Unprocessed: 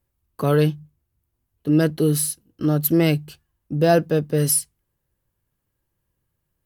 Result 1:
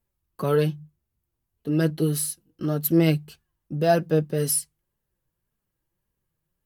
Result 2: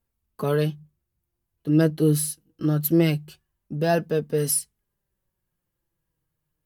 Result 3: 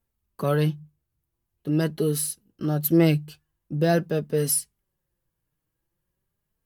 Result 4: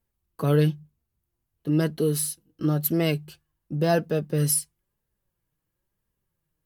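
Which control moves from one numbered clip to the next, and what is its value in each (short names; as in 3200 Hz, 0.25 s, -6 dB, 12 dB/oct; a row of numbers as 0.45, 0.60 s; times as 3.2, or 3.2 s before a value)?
flange, rate: 1.8, 0.23, 0.45, 0.99 Hz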